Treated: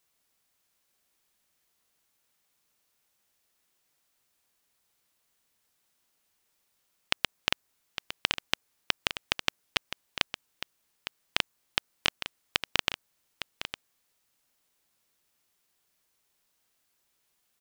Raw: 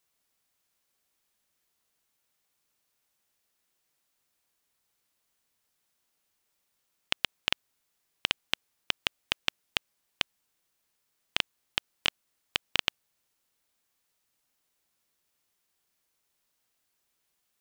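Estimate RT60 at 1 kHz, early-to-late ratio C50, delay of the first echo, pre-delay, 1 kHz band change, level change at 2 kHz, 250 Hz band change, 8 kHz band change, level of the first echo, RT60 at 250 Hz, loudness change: none, none, 0.858 s, none, +3.5 dB, +1.5 dB, +3.0 dB, +3.0 dB, -10.5 dB, none, 0.0 dB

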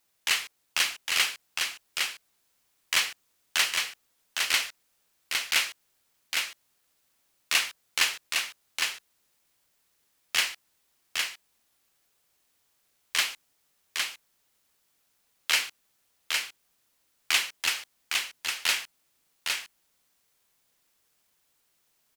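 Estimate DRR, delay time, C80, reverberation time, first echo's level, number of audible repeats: none, 0.809 s, none, none, -4.0 dB, 1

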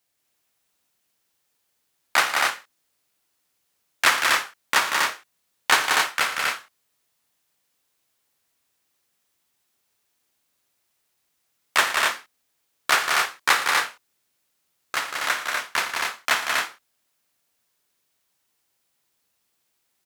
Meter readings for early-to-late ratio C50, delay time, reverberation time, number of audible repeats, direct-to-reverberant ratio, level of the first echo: none, 55 ms, none, 4, none, -13.5 dB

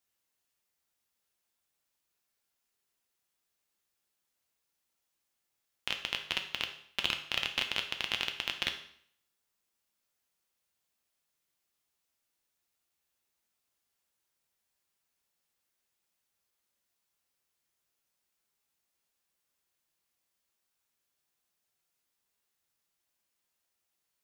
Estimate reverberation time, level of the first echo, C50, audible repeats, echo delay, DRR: 0.60 s, none, 9.5 dB, none, none, 4.5 dB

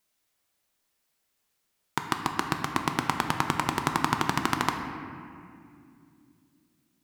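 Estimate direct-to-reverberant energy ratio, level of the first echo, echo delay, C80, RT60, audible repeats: 4.0 dB, none, none, 6.5 dB, 2.4 s, none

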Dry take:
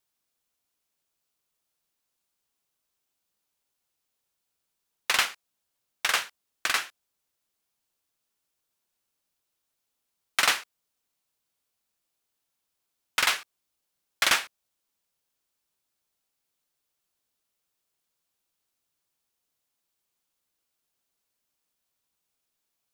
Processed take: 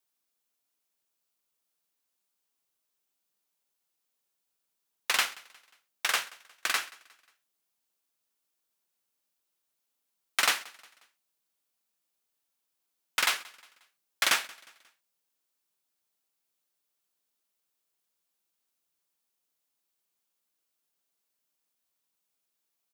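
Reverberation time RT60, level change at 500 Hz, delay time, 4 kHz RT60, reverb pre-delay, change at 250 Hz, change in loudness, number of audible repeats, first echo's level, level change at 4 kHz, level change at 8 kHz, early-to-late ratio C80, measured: none, -3.0 dB, 0.179 s, none, none, -3.5 dB, -2.5 dB, 2, -23.0 dB, -2.5 dB, -1.5 dB, none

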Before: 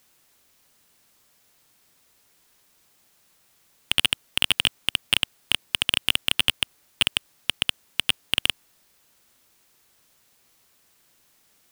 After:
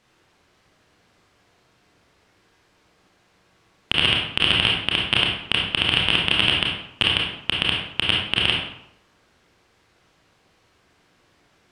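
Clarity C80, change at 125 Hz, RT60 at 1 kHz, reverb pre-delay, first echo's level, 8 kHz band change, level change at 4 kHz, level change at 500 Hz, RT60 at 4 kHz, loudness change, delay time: 5.0 dB, +12.0 dB, 0.75 s, 25 ms, none, -11.0 dB, +3.5 dB, +10.5 dB, 0.50 s, +4.0 dB, none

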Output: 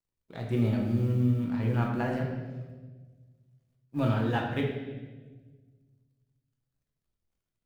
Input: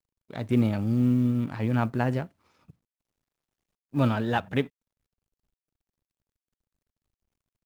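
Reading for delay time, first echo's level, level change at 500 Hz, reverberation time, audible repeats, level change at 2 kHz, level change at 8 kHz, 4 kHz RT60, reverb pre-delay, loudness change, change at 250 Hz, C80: none, none, -1.5 dB, 1.3 s, none, -2.5 dB, n/a, 1.2 s, 6 ms, -3.0 dB, -4.0 dB, 6.0 dB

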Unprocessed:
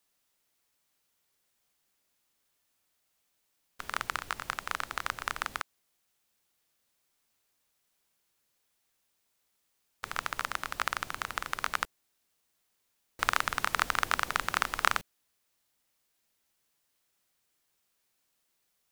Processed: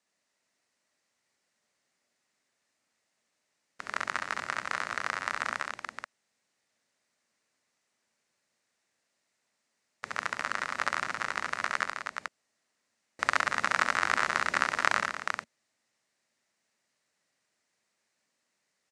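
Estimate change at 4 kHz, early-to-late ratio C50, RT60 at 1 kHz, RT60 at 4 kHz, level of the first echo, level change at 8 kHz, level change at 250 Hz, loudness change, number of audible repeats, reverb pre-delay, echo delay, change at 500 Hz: -1.0 dB, none, none, none, -4.0 dB, -1.0 dB, +3.0 dB, +2.0 dB, 4, none, 67 ms, +4.0 dB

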